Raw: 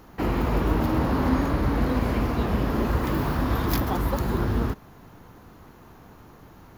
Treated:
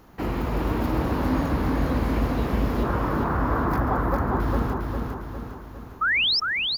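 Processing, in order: 2.83–4.4 EQ curve 210 Hz 0 dB, 1400 Hz +7 dB, 3200 Hz -14 dB; 6.01–6.4 painted sound rise 1200–5600 Hz -19 dBFS; feedback echo 0.405 s, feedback 50%, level -4 dB; gain -2.5 dB

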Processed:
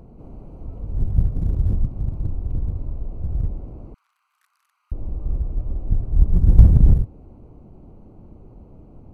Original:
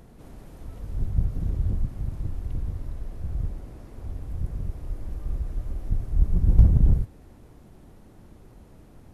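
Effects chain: Wiener smoothing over 25 samples; 3.94–4.92 steep high-pass 1200 Hz 48 dB/oct; gain +5.5 dB

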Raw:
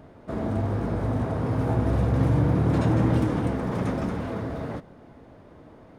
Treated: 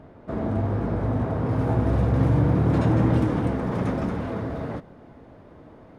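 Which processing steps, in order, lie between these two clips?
high shelf 4600 Hz -12 dB, from 1.49 s -6.5 dB; gain +1.5 dB

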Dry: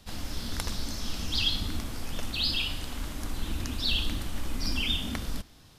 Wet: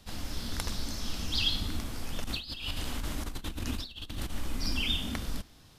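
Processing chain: 2.24–4.3 negative-ratio compressor -33 dBFS, ratio -0.5; gain -1.5 dB

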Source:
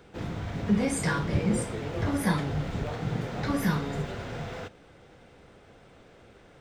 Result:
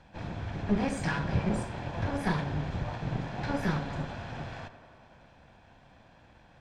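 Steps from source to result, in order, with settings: minimum comb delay 1.2 ms; air absorption 84 m; on a send: tape echo 92 ms, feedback 86%, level -14 dB, low-pass 3500 Hz; on the sum: gain -1.5 dB

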